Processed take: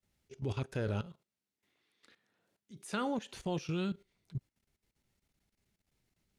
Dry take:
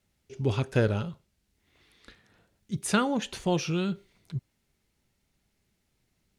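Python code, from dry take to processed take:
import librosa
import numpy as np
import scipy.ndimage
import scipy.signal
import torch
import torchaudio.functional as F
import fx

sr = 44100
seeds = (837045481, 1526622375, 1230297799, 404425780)

y = fx.highpass(x, sr, hz=190.0, slope=12, at=(1.06, 3.34))
y = fx.level_steps(y, sr, step_db=15)
y = F.gain(torch.from_numpy(y), -3.5).numpy()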